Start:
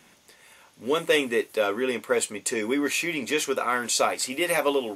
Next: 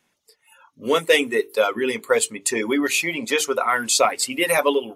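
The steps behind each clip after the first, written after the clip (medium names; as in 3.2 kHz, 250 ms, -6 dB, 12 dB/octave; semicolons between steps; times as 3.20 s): spectral noise reduction 18 dB; hum notches 50/100/150/200/250/300/350/400/450 Hz; reverb removal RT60 1.5 s; trim +6 dB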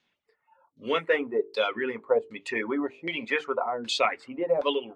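LFO low-pass saw down 1.3 Hz 440–4400 Hz; trim -8 dB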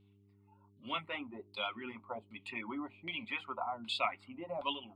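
vibrato 3.6 Hz 49 cents; static phaser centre 1.7 kHz, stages 6; mains buzz 100 Hz, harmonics 4, -60 dBFS -5 dB/octave; trim -6 dB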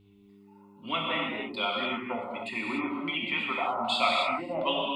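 gated-style reverb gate 320 ms flat, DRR -2.5 dB; trim +6 dB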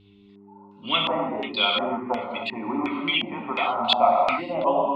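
LFO low-pass square 1.4 Hz 820–3900 Hz; trim +4.5 dB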